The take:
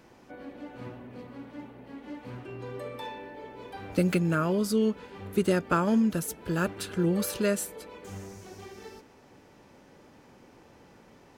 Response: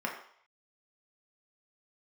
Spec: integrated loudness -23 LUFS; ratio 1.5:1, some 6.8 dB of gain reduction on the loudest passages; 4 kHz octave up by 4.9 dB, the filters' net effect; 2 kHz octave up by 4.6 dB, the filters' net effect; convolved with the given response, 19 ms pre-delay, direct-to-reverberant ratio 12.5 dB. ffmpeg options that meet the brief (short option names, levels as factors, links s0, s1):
-filter_complex "[0:a]equalizer=f=2000:t=o:g=5.5,equalizer=f=4000:t=o:g=4.5,acompressor=threshold=0.0112:ratio=1.5,asplit=2[s0][s1];[1:a]atrim=start_sample=2205,adelay=19[s2];[s1][s2]afir=irnorm=-1:irlink=0,volume=0.119[s3];[s0][s3]amix=inputs=2:normalize=0,volume=4.22"